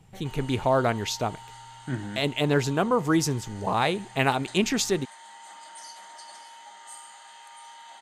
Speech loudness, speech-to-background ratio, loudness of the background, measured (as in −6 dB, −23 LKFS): −26.0 LKFS, 19.0 dB, −45.0 LKFS